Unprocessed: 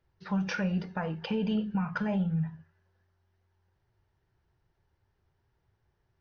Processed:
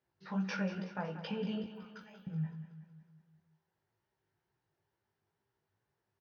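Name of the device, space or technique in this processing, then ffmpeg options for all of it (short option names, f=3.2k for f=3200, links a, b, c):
double-tracked vocal: -filter_complex "[0:a]highpass=160,asettb=1/sr,asplit=3[a][b][c];[a]atrim=end=1.644[d];[b]atrim=start=1.64:end=2.27,asetpts=PTS-STARTPTS,afade=t=in:d=0.004:c=qsin,afade=t=out:st=0.626:d=0.004:c=qsin,aderivative[e];[c]atrim=start=2.266[f];[d][e]acrossfade=d=0.004:c1=hsin:c2=qsin[g];[g][f]acrossfade=d=0.004:c1=qsin:c2=hsin,asplit=2[h][i];[i]adelay=20,volume=-11dB[j];[h][j]amix=inputs=2:normalize=0,flanger=delay=15:depth=5.5:speed=2.2,aecho=1:1:186|372|558|744|930|1116:0.251|0.138|0.076|0.0418|0.023|0.0126,volume=-3dB"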